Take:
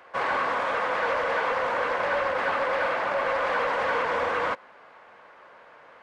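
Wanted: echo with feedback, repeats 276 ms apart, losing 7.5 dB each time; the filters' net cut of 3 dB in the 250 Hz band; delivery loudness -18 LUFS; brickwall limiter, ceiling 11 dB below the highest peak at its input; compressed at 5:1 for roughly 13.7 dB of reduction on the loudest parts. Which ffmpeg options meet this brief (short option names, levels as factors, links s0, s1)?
-af "equalizer=f=250:t=o:g=-4,acompressor=threshold=0.0112:ratio=5,alimiter=level_in=5.01:limit=0.0631:level=0:latency=1,volume=0.2,aecho=1:1:276|552|828|1104|1380:0.422|0.177|0.0744|0.0312|0.0131,volume=23.7"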